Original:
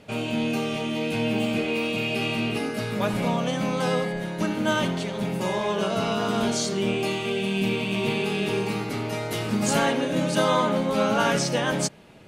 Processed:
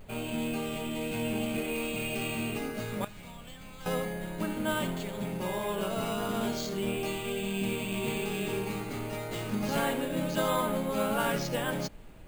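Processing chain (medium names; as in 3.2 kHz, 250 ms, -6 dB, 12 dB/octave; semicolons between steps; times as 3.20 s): 3.04–3.86 s: amplifier tone stack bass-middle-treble 5-5-5; added noise brown -42 dBFS; vibrato 0.31 Hz 12 cents; careless resampling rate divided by 4×, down filtered, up hold; trim -7 dB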